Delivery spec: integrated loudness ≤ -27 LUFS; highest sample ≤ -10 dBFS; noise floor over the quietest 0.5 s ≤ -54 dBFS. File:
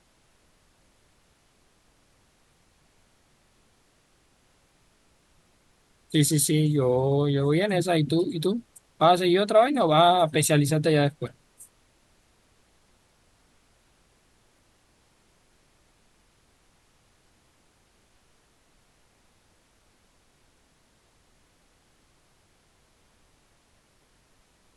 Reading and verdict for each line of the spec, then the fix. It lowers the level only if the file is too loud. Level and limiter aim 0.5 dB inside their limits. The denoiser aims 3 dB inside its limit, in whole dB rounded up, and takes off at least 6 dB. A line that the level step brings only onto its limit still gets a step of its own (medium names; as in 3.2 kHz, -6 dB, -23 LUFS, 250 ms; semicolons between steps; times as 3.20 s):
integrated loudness -22.5 LUFS: fail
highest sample -7.0 dBFS: fail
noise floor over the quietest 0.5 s -64 dBFS: pass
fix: trim -5 dB